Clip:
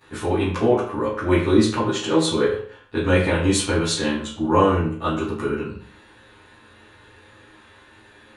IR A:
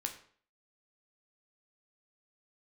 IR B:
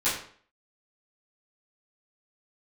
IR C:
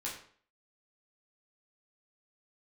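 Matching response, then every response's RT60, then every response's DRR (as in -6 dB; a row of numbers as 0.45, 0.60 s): B; 0.50, 0.50, 0.50 s; 4.0, -15.0, -5.5 dB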